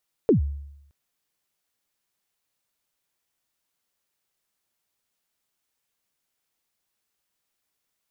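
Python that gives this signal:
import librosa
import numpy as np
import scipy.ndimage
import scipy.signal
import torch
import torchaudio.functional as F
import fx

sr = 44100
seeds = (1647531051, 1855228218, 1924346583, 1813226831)

y = fx.drum_kick(sr, seeds[0], length_s=0.62, level_db=-12, start_hz=500.0, end_hz=71.0, sweep_ms=116.0, decay_s=0.83, click=False)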